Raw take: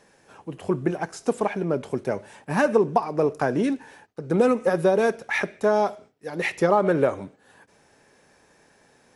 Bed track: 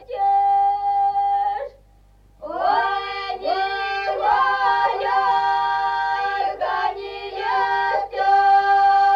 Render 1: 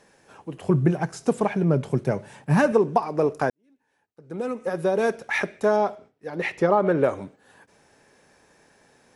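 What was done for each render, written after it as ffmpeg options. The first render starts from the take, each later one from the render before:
-filter_complex "[0:a]asettb=1/sr,asplit=3[a][b][c];[a]atrim=end=0.694[d];[b]atrim=start=0.69:end=2.72,asetpts=PTS-STARTPTS,afade=t=in:d=0.004:c=qsin,afade=t=out:st=2.026:d=0.004:c=qsin,equalizer=f=140:t=o:w=0.87:g=12.5[e];[c]atrim=start=2.716[f];[d][e]acrossfade=d=0.004:c1=hsin:c2=qsin[g];[g][f]acrossfade=d=0.004:c1=qsin:c2=hsin,asettb=1/sr,asplit=3[h][i][j];[h]atrim=end=5.764[k];[i]atrim=start=5.76:end=7.04,asetpts=PTS-STARTPTS,afade=t=in:d=0.004:c=qsin,afade=t=out:st=1.276:d=0.004:c=qsin,lowpass=f=2.8k:p=1[l];[j]atrim=start=7.036[m];[k][l]acrossfade=d=0.004:c1=hsin:c2=qsin[n];[n][m]acrossfade=d=0.004:c1=qsin:c2=hsin,asplit=2[o][p];[o]atrim=end=3.5,asetpts=PTS-STARTPTS,afade=t=out:st=3.496:d=0.004:c=hsin[q];[p]atrim=start=3.5,asetpts=PTS-STARTPTS,afade=t=in:d=1.67:c=qua[r];[q][r]concat=n=2:v=0:a=1"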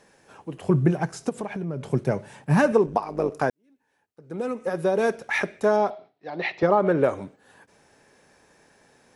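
-filter_complex "[0:a]asplit=3[a][b][c];[a]afade=t=out:st=1.28:d=0.02[d];[b]acompressor=threshold=-28dB:ratio=4:attack=3.2:release=140:knee=1:detection=peak,afade=t=in:st=1.28:d=0.02,afade=t=out:st=1.86:d=0.02[e];[c]afade=t=in:st=1.86:d=0.02[f];[d][e][f]amix=inputs=3:normalize=0,asettb=1/sr,asplit=3[g][h][i];[g]atrim=end=2.864[j];[h]atrim=start=2.86:end=3.32,asetpts=PTS-STARTPTS,afade=t=in:d=0.004:c=qsin,afade=t=out:st=0.456:d=0.004:c=qsin,tremolo=f=100:d=0.71[k];[i]atrim=start=3.316[l];[j][k]acrossfade=d=0.004:c1=hsin:c2=qsin[m];[m][l]acrossfade=d=0.004:c1=qsin:c2=hsin,asettb=1/sr,asplit=3[n][o][p];[n]atrim=end=5.904[q];[o]atrim=start=5.9:end=6.63,asetpts=PTS-STARTPTS,afade=t=in:d=0.004:c=qsin,afade=t=out:st=0.726:d=0.004:c=qsin,highpass=170,equalizer=f=230:t=q:w=4:g=-8,equalizer=f=470:t=q:w=4:g=-7,equalizer=f=700:t=q:w=4:g=8,equalizer=f=1.5k:t=q:w=4:g=-3,equalizer=f=4k:t=q:w=4:g=8,lowpass=f=4.8k:w=0.5412,lowpass=f=4.8k:w=1.3066[r];[p]atrim=start=6.626[s];[q][r]acrossfade=d=0.004:c1=hsin:c2=qsin[t];[t][s]acrossfade=d=0.004:c1=qsin:c2=hsin"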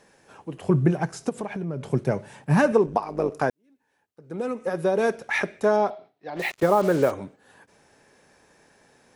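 -filter_complex "[0:a]asplit=3[a][b][c];[a]afade=t=out:st=6.35:d=0.02[d];[b]acrusher=bits=5:mix=0:aa=0.5,afade=t=in:st=6.35:d=0.02,afade=t=out:st=7.1:d=0.02[e];[c]afade=t=in:st=7.1:d=0.02[f];[d][e][f]amix=inputs=3:normalize=0"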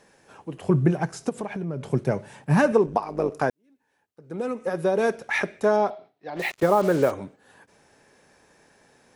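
-af anull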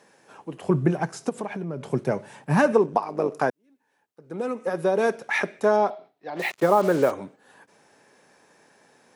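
-af "highpass=150,equalizer=f=990:w=1.5:g=2"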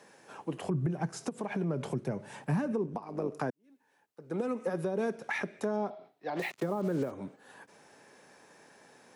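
-filter_complex "[0:a]acrossover=split=310[a][b];[b]acompressor=threshold=-32dB:ratio=5[c];[a][c]amix=inputs=2:normalize=0,alimiter=limit=-22dB:level=0:latency=1:release=259"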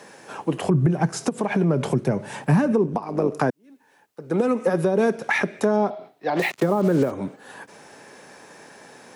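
-af "volume=12dB"

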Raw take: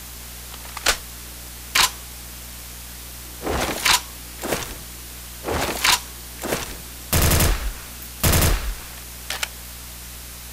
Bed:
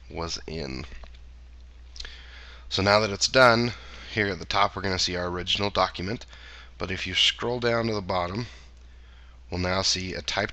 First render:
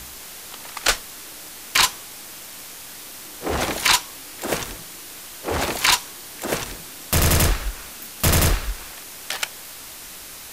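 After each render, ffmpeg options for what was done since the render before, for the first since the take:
-af "bandreject=f=60:t=h:w=4,bandreject=f=120:t=h:w=4,bandreject=f=180:t=h:w=4,bandreject=f=240:t=h:w=4"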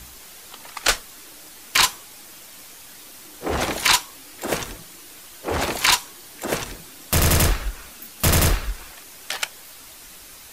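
-af "afftdn=nr=6:nf=-39"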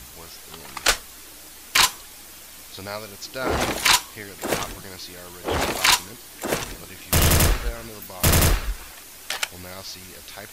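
-filter_complex "[1:a]volume=-13dB[a];[0:a][a]amix=inputs=2:normalize=0"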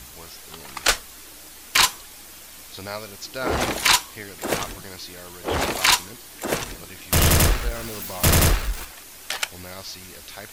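-filter_complex "[0:a]asettb=1/sr,asplit=3[a][b][c];[a]atrim=end=7.184[d];[b]atrim=start=7.18:end=8.85,asetpts=PTS-STARTPTS,afade=t=in:d=0.004:c=qsin,afade=t=out:st=1.666:d=0.004:c=qsin,aeval=exprs='val(0)+0.5*0.0237*sgn(val(0))':c=same[e];[c]atrim=start=8.846[f];[d][e]acrossfade=d=0.004:c1=hsin:c2=qsin[g];[g][f]acrossfade=d=0.004:c1=qsin:c2=hsin"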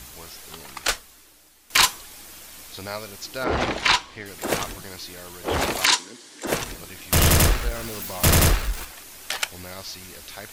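-filter_complex "[0:a]asettb=1/sr,asplit=3[a][b][c];[a]atrim=end=3.444[d];[b]atrim=start=3.44:end=4.26,asetpts=PTS-STARTPTS,afade=t=in:d=0.004:c=qsin,afade=t=out:st=0.816:d=0.004:c=qsin,lowpass=4.3k[e];[c]atrim=start=4.256[f];[d][e]acrossfade=d=0.004:c1=hsin:c2=qsin[g];[g][f]acrossfade=d=0.004:c1=qsin:c2=hsin,asettb=1/sr,asplit=3[h][i][j];[h]atrim=end=5.854[k];[i]atrim=start=5.85:end=6.47,asetpts=PTS-STARTPTS,afade=t=in:d=0.004:c=qsin,afade=t=out:st=0.616:d=0.004:c=qsin,highpass=f=160:w=0.5412,highpass=f=160:w=1.3066,equalizer=f=180:t=q:w=4:g=-10,equalizer=f=270:t=q:w=4:g=4,equalizer=f=710:t=q:w=4:g=-9,equalizer=f=1.2k:t=q:w=4:g=-5,equalizer=f=2.5k:t=q:w=4:g=-5,lowpass=f=8.5k:w=0.5412,lowpass=f=8.5k:w=1.3066[l];[j]atrim=start=6.466[m];[k][l]acrossfade=d=0.004:c1=hsin:c2=qsin[n];[n][m]acrossfade=d=0.004:c1=qsin:c2=hsin,asplit=2[o][p];[o]atrim=end=1.7,asetpts=PTS-STARTPTS,afade=t=out:st=0.54:d=1.16:c=qua:silence=0.223872[q];[p]atrim=start=1.7,asetpts=PTS-STARTPTS,afade=t=in:d=0.004:c=hsin:silence=0.223872[r];[q][r]concat=n=2:v=0:a=1"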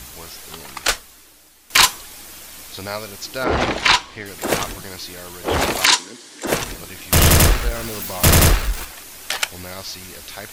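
-af "volume=4.5dB"

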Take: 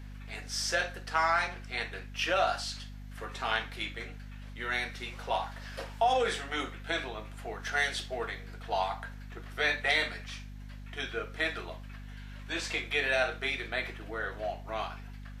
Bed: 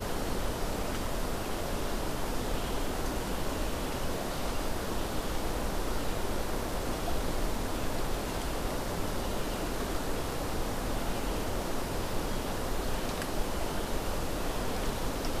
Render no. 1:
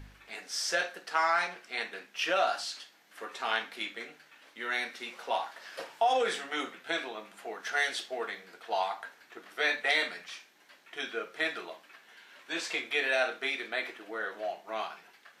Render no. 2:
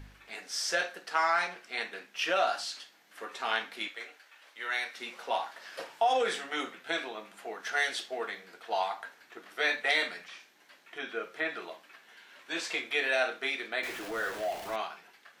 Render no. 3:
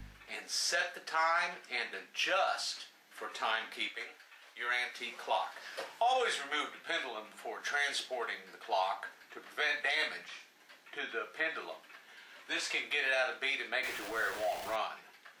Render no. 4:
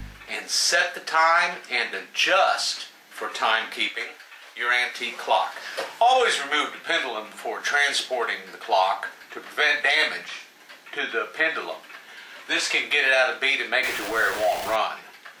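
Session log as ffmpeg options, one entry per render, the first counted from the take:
-af "bandreject=f=50:t=h:w=4,bandreject=f=100:t=h:w=4,bandreject=f=150:t=h:w=4,bandreject=f=200:t=h:w=4,bandreject=f=250:t=h:w=4"
-filter_complex "[0:a]asettb=1/sr,asplit=3[a][b][c];[a]atrim=end=3.884[d];[b]atrim=start=3.88:end=4.97,asetpts=PTS-STARTPTS,afade=t=in:d=0.004:c=qsin,afade=t=out:st=1.086:d=0.004:c=qsin,highpass=530[e];[c]atrim=start=4.966[f];[d][e]acrossfade=d=0.004:c1=hsin:c2=qsin[g];[g][f]acrossfade=d=0.004:c1=qsin:c2=hsin,asettb=1/sr,asplit=3[h][i][j];[h]atrim=end=10.274[k];[i]atrim=start=10.27:end=11.62,asetpts=PTS-STARTPTS,afade=t=in:d=0.004:c=qsin,afade=t=out:st=1.346:d=0.004:c=qsin,acrossover=split=2800[l][m];[m]acompressor=threshold=-52dB:ratio=4:attack=1:release=60[n];[l][n]amix=inputs=2:normalize=0[o];[j]atrim=start=11.616[p];[k][o]acrossfade=d=0.004:c1=hsin:c2=qsin[q];[q][p]acrossfade=d=0.004:c1=qsin:c2=hsin,asettb=1/sr,asplit=3[r][s][t];[r]atrim=end=13.834[u];[s]atrim=start=13.83:end=14.76,asetpts=PTS-STARTPTS,afade=t=in:d=0.004:c=qsin,afade=t=out:st=0.926:d=0.004:c=qsin,aeval=exprs='val(0)+0.5*0.0133*sgn(val(0))':c=same[v];[t]atrim=start=14.756[w];[u][v]acrossfade=d=0.004:c1=hsin:c2=qsin[x];[x][w]acrossfade=d=0.004:c1=qsin:c2=hsin"
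-filter_complex "[0:a]acrossover=split=110|490|4000[a][b][c][d];[b]acompressor=threshold=-50dB:ratio=6[e];[a][e][c][d]amix=inputs=4:normalize=0,alimiter=limit=-21.5dB:level=0:latency=1:release=90"
-af "volume=12dB"

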